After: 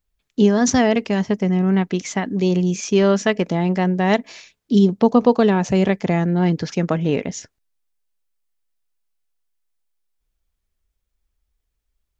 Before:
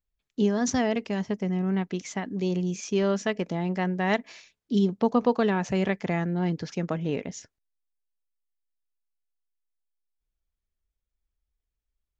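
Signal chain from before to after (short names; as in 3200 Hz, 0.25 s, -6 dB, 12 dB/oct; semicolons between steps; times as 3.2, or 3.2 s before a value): 3.72–6.28 dynamic EQ 1700 Hz, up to -5 dB, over -42 dBFS, Q 0.8; gain +9 dB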